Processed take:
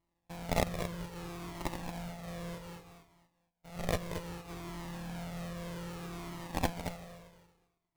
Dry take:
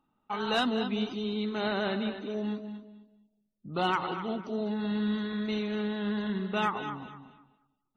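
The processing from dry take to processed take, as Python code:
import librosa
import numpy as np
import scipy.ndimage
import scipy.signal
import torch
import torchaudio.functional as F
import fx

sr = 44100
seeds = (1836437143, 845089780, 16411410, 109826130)

y = np.r_[np.sort(x[:len(x) // 256 * 256].reshape(-1, 256), axis=1).ravel(), x[len(x) // 256 * 256:]]
y = fx.formant_shift(y, sr, semitones=6)
y = fx.cheby_harmonics(y, sr, harmonics=(3, 5), levels_db=(-7, -36), full_scale_db=-15.0)
y = fx.sample_hold(y, sr, seeds[0], rate_hz=1500.0, jitter_pct=20)
y = y + 10.0 ** (-8.5 / 20.0) * np.pad(y, (int(225 * sr / 1000.0), 0))[:len(y)]
y = fx.comb_cascade(y, sr, direction='falling', hz=0.63)
y = y * librosa.db_to_amplitude(9.5)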